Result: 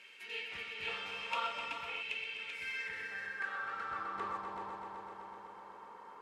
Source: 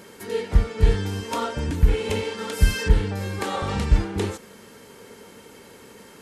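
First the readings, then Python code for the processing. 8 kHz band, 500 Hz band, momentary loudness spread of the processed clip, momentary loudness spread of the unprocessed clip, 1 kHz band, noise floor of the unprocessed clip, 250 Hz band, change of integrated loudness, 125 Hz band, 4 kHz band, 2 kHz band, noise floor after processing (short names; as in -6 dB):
-23.5 dB, -21.5 dB, 13 LU, 7 LU, -7.5 dB, -47 dBFS, -27.0 dB, -15.5 dB, -40.0 dB, -9.0 dB, -4.5 dB, -53 dBFS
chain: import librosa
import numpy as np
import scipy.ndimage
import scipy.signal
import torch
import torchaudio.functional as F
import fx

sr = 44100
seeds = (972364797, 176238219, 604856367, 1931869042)

p1 = x + fx.echo_heads(x, sr, ms=127, heads='all three', feedback_pct=68, wet_db=-11.5, dry=0)
p2 = fx.filter_sweep_bandpass(p1, sr, from_hz=2600.0, to_hz=1000.0, start_s=2.37, end_s=4.59, q=6.5)
p3 = fx.rider(p2, sr, range_db=4, speed_s=0.5)
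p4 = fx.spec_box(p3, sr, start_s=0.88, length_s=1.13, low_hz=470.0, high_hz=1400.0, gain_db=10)
p5 = scipy.signal.sosfilt(scipy.signal.butter(2, 91.0, 'highpass', fs=sr, output='sos'), p4)
y = p5 * librosa.db_to_amplitude(1.5)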